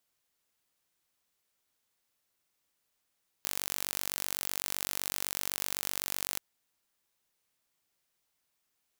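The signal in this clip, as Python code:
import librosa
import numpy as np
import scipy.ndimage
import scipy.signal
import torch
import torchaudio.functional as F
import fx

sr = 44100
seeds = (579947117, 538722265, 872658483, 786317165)

y = 10.0 ** (-6.5 / 20.0) * (np.mod(np.arange(round(2.93 * sr)), round(sr / 47.9)) == 0)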